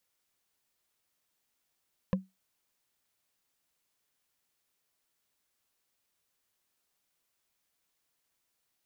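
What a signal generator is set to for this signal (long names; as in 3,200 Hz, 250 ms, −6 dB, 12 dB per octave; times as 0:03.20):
struck wood, lowest mode 189 Hz, decay 0.20 s, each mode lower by 4.5 dB, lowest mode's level −21 dB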